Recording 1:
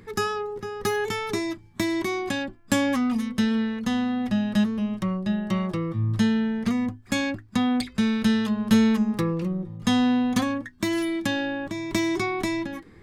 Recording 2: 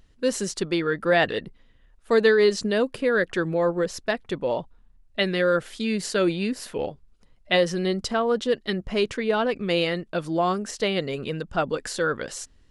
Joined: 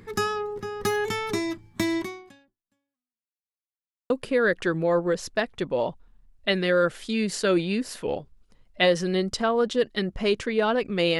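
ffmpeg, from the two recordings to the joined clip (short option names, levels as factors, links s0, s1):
-filter_complex "[0:a]apad=whole_dur=11.19,atrim=end=11.19,asplit=2[s0][s1];[s0]atrim=end=3.41,asetpts=PTS-STARTPTS,afade=t=out:st=1.97:d=1.44:c=exp[s2];[s1]atrim=start=3.41:end=4.1,asetpts=PTS-STARTPTS,volume=0[s3];[1:a]atrim=start=2.81:end=9.9,asetpts=PTS-STARTPTS,afade=t=in:d=0.004:c=hsin[s4];[s2][s3][s4]concat=n=3:v=0:a=1"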